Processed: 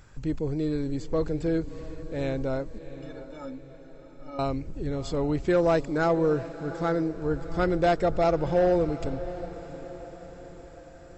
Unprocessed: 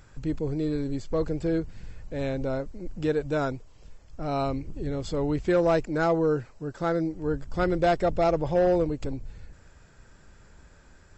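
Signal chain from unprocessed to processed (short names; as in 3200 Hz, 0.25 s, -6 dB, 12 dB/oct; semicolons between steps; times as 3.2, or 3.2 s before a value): 2.78–4.39 metallic resonator 260 Hz, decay 0.21 s, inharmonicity 0.03; on a send: diffused feedback echo 0.701 s, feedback 53%, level -14 dB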